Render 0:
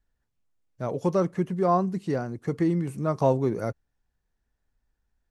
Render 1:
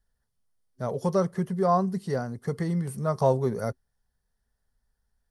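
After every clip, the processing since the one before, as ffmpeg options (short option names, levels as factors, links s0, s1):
-af "superequalizer=6b=0.251:12b=0.447:14b=1.58:16b=2.51"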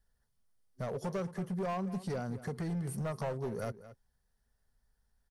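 -filter_complex "[0:a]acompressor=threshold=0.0251:ratio=4,asoftclip=type=hard:threshold=0.0266,asplit=2[s0][s1];[s1]adelay=221.6,volume=0.178,highshelf=f=4000:g=-4.99[s2];[s0][s2]amix=inputs=2:normalize=0"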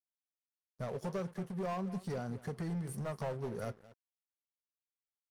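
-af "flanger=delay=2.6:depth=6.2:regen=-81:speed=0.67:shape=triangular,aeval=exprs='sgn(val(0))*max(abs(val(0))-0.00112,0)':c=same,volume=1.41"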